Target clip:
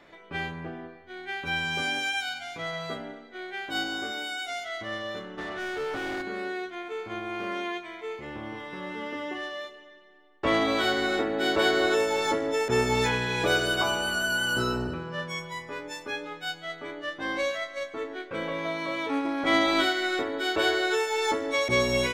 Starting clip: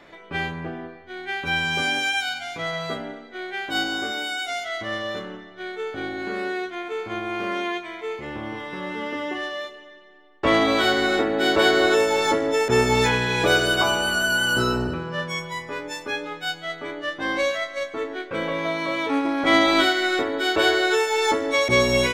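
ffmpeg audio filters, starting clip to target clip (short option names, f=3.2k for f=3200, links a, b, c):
-filter_complex "[0:a]asplit=3[a][b][c];[a]afade=t=out:st=5.37:d=0.02[d];[b]asplit=2[e][f];[f]highpass=f=720:p=1,volume=33dB,asoftclip=type=tanh:threshold=-19dB[g];[e][g]amix=inputs=2:normalize=0,lowpass=f=1.4k:p=1,volume=-6dB,afade=t=in:st=5.37:d=0.02,afade=t=out:st=6.21:d=0.02[h];[c]afade=t=in:st=6.21:d=0.02[i];[d][h][i]amix=inputs=3:normalize=0,volume=-5.5dB"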